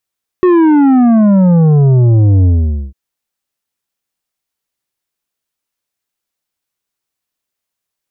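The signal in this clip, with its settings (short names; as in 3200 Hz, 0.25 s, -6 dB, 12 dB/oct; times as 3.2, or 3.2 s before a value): sub drop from 370 Hz, over 2.50 s, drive 8.5 dB, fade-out 0.48 s, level -6 dB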